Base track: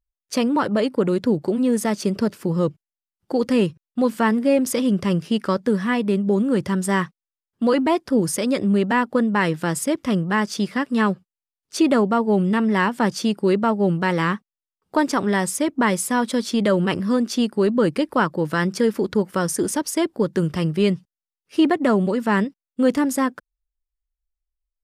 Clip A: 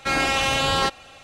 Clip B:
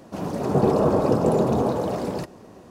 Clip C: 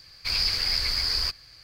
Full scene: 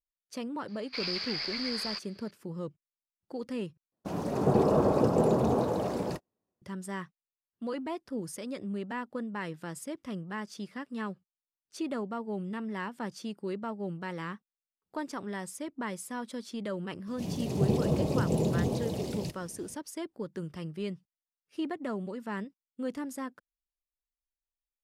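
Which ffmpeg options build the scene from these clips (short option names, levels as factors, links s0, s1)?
-filter_complex "[2:a]asplit=2[s0][s1];[0:a]volume=0.141[s2];[3:a]acrossover=split=240 5000:gain=0.0708 1 0.0708[s3][s4][s5];[s3][s4][s5]amix=inputs=3:normalize=0[s6];[s0]agate=range=0.0158:threshold=0.0126:ratio=16:release=100:detection=peak[s7];[s1]firequalizer=gain_entry='entry(160,0);entry(240,-6);entry(1400,-20);entry(2100,-4);entry(3000,1)':delay=0.05:min_phase=1[s8];[s2]asplit=2[s9][s10];[s9]atrim=end=3.924[s11];[s7]atrim=end=2.7,asetpts=PTS-STARTPTS,volume=0.562[s12];[s10]atrim=start=6.616[s13];[s6]atrim=end=1.63,asetpts=PTS-STARTPTS,volume=0.531,afade=t=in:d=0.004:c=hsin,afade=t=out:st=1.626:d=0.004:c=hsin,adelay=680[s14];[s8]atrim=end=2.7,asetpts=PTS-STARTPTS,volume=0.75,afade=t=in:d=0.02,afade=t=out:st=2.68:d=0.02,adelay=17060[s15];[s11][s12]acrossfade=d=0.004:c1=hsin:c2=hsin[s16];[s16][s13]acrossfade=d=0.004:c1=hsin:c2=hsin[s17];[s17][s14][s15]amix=inputs=3:normalize=0"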